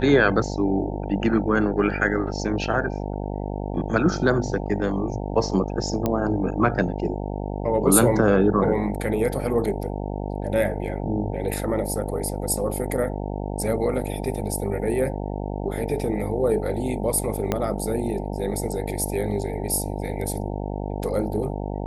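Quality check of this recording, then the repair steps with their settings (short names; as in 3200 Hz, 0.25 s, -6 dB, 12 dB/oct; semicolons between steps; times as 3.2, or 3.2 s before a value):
buzz 50 Hz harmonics 18 -29 dBFS
6.06 pop -10 dBFS
17.52 pop -9 dBFS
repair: de-click; de-hum 50 Hz, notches 18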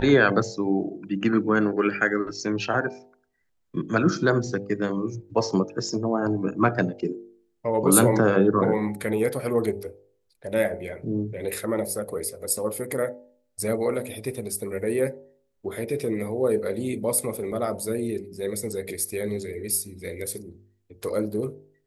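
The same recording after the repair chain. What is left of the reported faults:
17.52 pop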